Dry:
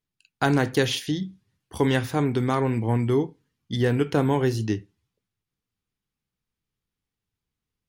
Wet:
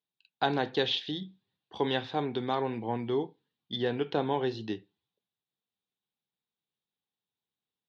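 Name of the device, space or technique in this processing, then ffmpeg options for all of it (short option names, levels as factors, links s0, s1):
kitchen radio: -af "highpass=220,equalizer=f=280:t=q:w=4:g=-4,equalizer=f=790:t=q:w=4:g=5,equalizer=f=1300:t=q:w=4:g=-5,equalizer=f=2100:t=q:w=4:g=-5,equalizer=f=3700:t=q:w=4:g=10,lowpass=f=4100:w=0.5412,lowpass=f=4100:w=1.3066,volume=0.531"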